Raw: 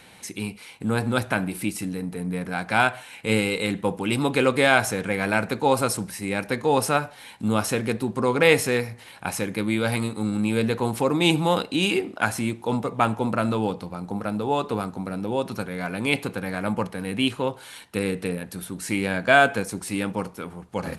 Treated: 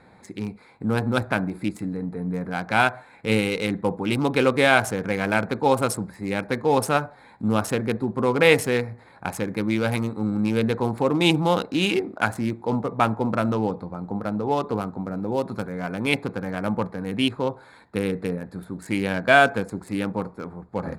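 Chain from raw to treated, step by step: local Wiener filter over 15 samples; 15.22–15.71 s: treble shelf 7.8 kHz +9.5 dB; trim +1 dB

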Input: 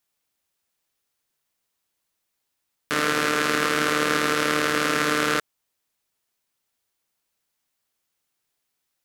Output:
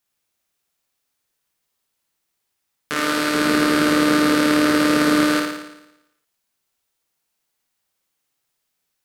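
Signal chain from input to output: 3.34–5.24 s: bass shelf 470 Hz +8 dB; flutter echo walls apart 9.7 m, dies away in 0.9 s

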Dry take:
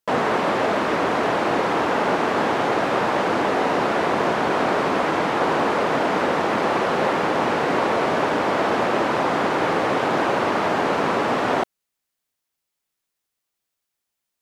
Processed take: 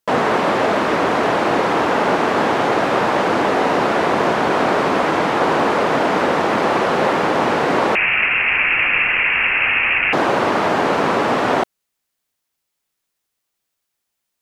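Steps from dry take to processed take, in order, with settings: 7.95–10.13 s: frequency inversion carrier 3 kHz; trim +4 dB

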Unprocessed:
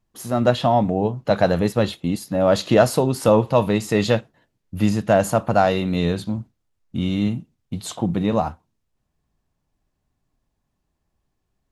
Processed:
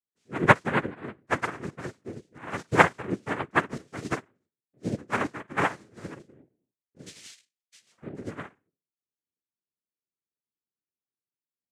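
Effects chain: 7.06–7.84 s: frequency inversion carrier 3.9 kHz; reverberation RT60 0.30 s, pre-delay 4 ms, DRR -5 dB; noise-vocoded speech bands 3; upward expansion 2.5:1, over -19 dBFS; trim -10 dB

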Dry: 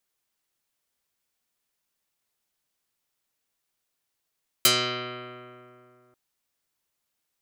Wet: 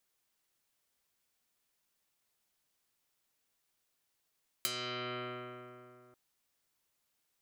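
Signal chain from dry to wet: compression 8:1, threshold -35 dBFS, peak gain reduction 18.5 dB

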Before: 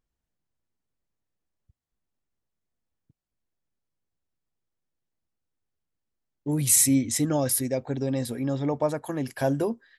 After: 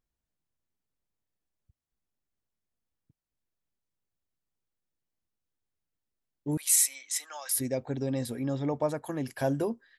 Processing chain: 6.57–7.55 s: high-pass 940 Hz 24 dB/octave; trim -3.5 dB

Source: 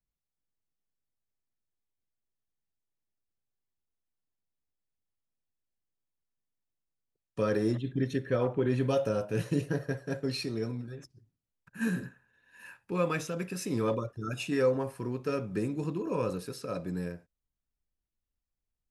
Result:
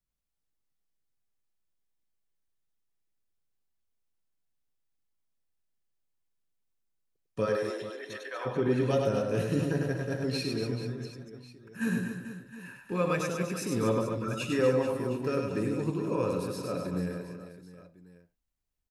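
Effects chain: 7.45–8.45 s: high-pass 390 Hz -> 820 Hz 24 dB/octave; reverse bouncing-ball echo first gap 100 ms, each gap 1.4×, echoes 5

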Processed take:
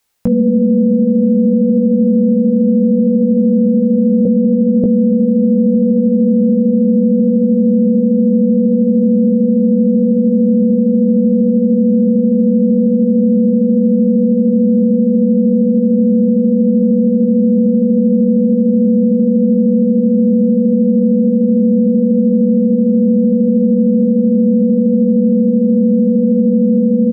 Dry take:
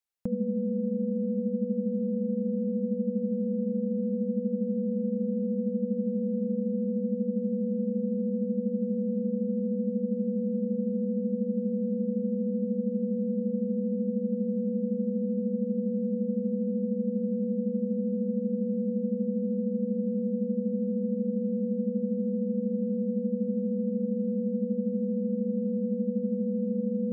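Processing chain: 4.25–4.84 s: steep low-pass 530 Hz 72 dB/octave; doubling 17 ms -6 dB; loudness maximiser +26.5 dB; trim -4 dB

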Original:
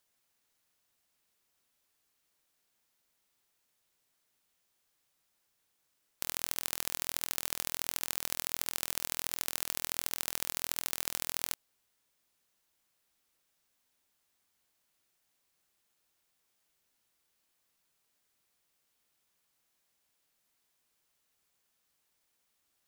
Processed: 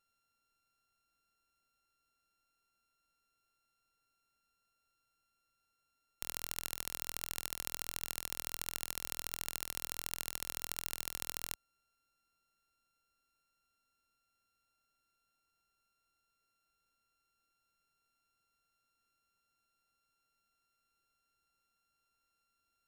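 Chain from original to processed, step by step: sorted samples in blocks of 32 samples; bass shelf 64 Hz +11 dB; trim -5 dB

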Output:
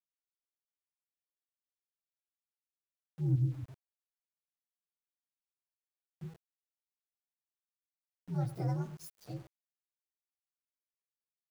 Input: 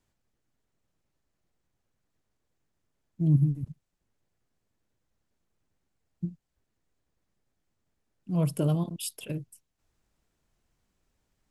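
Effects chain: frequency axis rescaled in octaves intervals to 123%; delay 102 ms -16.5 dB; small samples zeroed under -46 dBFS; trim -6.5 dB

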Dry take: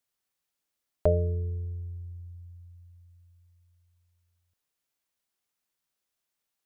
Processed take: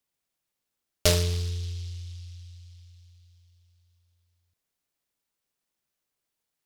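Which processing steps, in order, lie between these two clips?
delay time shaken by noise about 4.1 kHz, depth 0.27 ms; trim +1.5 dB

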